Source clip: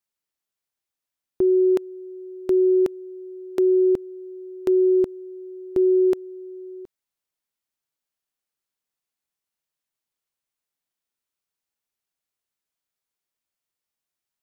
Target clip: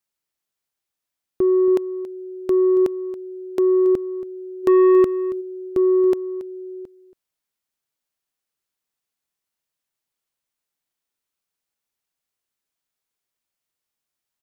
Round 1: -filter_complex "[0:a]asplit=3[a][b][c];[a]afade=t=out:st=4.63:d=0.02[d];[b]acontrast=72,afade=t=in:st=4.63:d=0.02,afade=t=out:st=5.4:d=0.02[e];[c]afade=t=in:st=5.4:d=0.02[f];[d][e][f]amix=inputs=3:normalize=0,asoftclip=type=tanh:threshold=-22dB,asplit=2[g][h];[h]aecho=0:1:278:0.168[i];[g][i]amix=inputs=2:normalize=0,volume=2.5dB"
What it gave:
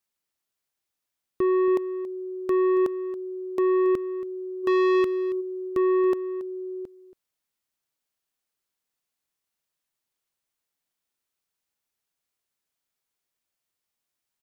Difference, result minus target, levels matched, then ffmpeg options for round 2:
soft clip: distortion +7 dB
-filter_complex "[0:a]asplit=3[a][b][c];[a]afade=t=out:st=4.63:d=0.02[d];[b]acontrast=72,afade=t=in:st=4.63:d=0.02,afade=t=out:st=5.4:d=0.02[e];[c]afade=t=in:st=5.4:d=0.02[f];[d][e][f]amix=inputs=3:normalize=0,asoftclip=type=tanh:threshold=-13dB,asplit=2[g][h];[h]aecho=0:1:278:0.168[i];[g][i]amix=inputs=2:normalize=0,volume=2.5dB"

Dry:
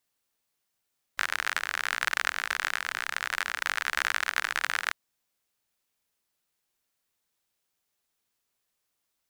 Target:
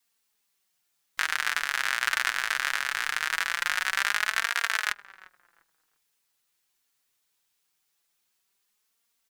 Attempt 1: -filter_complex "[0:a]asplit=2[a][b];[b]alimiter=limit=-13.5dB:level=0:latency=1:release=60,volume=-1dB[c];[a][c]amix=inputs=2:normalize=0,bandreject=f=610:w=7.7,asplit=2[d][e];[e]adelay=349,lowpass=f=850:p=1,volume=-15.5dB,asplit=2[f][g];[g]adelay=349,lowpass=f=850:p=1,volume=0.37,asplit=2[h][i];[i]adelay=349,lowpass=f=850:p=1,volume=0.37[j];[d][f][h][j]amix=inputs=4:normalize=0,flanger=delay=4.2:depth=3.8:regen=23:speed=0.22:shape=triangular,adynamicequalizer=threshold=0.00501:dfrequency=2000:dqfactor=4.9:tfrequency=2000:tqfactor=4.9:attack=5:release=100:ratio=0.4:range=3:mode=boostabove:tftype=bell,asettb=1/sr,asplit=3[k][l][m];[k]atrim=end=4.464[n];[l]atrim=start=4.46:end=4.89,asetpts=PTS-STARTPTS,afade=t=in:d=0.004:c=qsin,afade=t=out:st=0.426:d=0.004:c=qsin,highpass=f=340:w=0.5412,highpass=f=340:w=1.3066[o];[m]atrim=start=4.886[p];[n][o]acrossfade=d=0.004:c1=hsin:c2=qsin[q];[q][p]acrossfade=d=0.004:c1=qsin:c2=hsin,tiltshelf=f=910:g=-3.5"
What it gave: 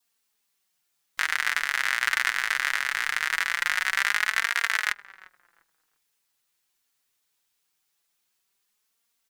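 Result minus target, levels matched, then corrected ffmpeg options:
500 Hz band -3.0 dB
-filter_complex "[0:a]asplit=2[a][b];[b]alimiter=limit=-13.5dB:level=0:latency=1:release=60,volume=-1dB[c];[a][c]amix=inputs=2:normalize=0,bandreject=f=610:w=7.7,asplit=2[d][e];[e]adelay=349,lowpass=f=850:p=1,volume=-15.5dB,asplit=2[f][g];[g]adelay=349,lowpass=f=850:p=1,volume=0.37,asplit=2[h][i];[i]adelay=349,lowpass=f=850:p=1,volume=0.37[j];[d][f][h][j]amix=inputs=4:normalize=0,flanger=delay=4.2:depth=3.8:regen=23:speed=0.22:shape=triangular,adynamicequalizer=threshold=0.00501:dfrequency=630:dqfactor=4.9:tfrequency=630:tqfactor=4.9:attack=5:release=100:ratio=0.4:range=3:mode=boostabove:tftype=bell,asettb=1/sr,asplit=3[k][l][m];[k]atrim=end=4.464[n];[l]atrim=start=4.46:end=4.89,asetpts=PTS-STARTPTS,afade=t=in:d=0.004:c=qsin,afade=t=out:st=0.426:d=0.004:c=qsin,highpass=f=340:w=0.5412,highpass=f=340:w=1.3066[o];[m]atrim=start=4.886[p];[n][o]acrossfade=d=0.004:c1=hsin:c2=qsin[q];[q][p]acrossfade=d=0.004:c1=qsin:c2=hsin,tiltshelf=f=910:g=-3.5"

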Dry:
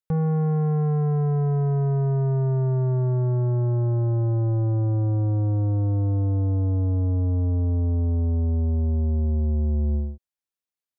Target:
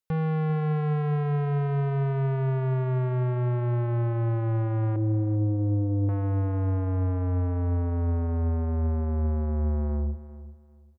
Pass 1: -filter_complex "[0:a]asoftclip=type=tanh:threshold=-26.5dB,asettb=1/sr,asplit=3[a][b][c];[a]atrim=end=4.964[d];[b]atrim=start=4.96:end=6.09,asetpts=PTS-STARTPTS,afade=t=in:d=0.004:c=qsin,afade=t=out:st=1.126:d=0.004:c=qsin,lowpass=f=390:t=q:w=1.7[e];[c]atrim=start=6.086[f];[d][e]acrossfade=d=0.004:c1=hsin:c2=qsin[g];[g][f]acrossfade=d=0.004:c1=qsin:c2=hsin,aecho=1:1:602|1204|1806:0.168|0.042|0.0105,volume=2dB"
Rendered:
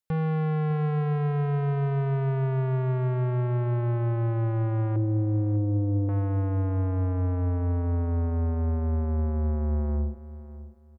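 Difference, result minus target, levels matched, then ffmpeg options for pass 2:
echo 0.208 s late
-filter_complex "[0:a]asoftclip=type=tanh:threshold=-26.5dB,asettb=1/sr,asplit=3[a][b][c];[a]atrim=end=4.964[d];[b]atrim=start=4.96:end=6.09,asetpts=PTS-STARTPTS,afade=t=in:d=0.004:c=qsin,afade=t=out:st=1.126:d=0.004:c=qsin,lowpass=f=390:t=q:w=1.7[e];[c]atrim=start=6.086[f];[d][e]acrossfade=d=0.004:c1=hsin:c2=qsin[g];[g][f]acrossfade=d=0.004:c1=qsin:c2=hsin,aecho=1:1:394|788|1182:0.168|0.042|0.0105,volume=2dB"

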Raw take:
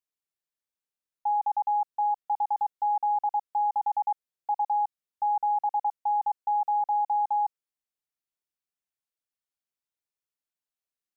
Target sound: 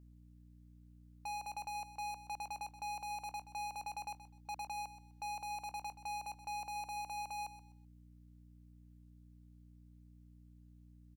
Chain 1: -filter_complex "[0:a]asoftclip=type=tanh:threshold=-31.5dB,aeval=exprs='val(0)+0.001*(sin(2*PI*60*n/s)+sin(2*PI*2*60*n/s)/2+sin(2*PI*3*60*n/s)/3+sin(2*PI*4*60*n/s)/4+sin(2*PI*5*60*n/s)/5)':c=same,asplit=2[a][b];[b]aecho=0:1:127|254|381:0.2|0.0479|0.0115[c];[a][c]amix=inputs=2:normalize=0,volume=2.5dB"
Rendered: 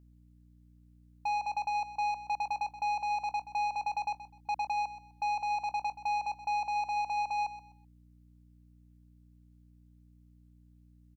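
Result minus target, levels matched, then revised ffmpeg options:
soft clip: distortion -4 dB
-filter_complex "[0:a]asoftclip=type=tanh:threshold=-43dB,aeval=exprs='val(0)+0.001*(sin(2*PI*60*n/s)+sin(2*PI*2*60*n/s)/2+sin(2*PI*3*60*n/s)/3+sin(2*PI*4*60*n/s)/4+sin(2*PI*5*60*n/s)/5)':c=same,asplit=2[a][b];[b]aecho=0:1:127|254|381:0.2|0.0479|0.0115[c];[a][c]amix=inputs=2:normalize=0,volume=2.5dB"

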